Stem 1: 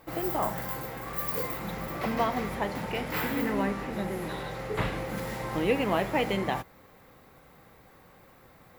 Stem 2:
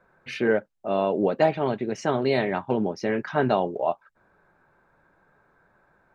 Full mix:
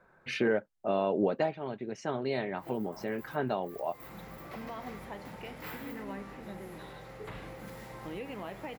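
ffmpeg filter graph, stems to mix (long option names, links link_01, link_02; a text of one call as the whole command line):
ffmpeg -i stem1.wav -i stem2.wav -filter_complex "[0:a]alimiter=limit=-20dB:level=0:latency=1:release=114,adelay=2500,volume=-11dB[link_01];[1:a]volume=-1dB,afade=type=out:start_time=1.38:duration=0.2:silence=0.375837,asplit=2[link_02][link_03];[link_03]apad=whole_len=497512[link_04];[link_01][link_04]sidechaincompress=threshold=-44dB:ratio=4:attack=5.4:release=132[link_05];[link_05][link_02]amix=inputs=2:normalize=0,alimiter=limit=-17.5dB:level=0:latency=1:release=448" out.wav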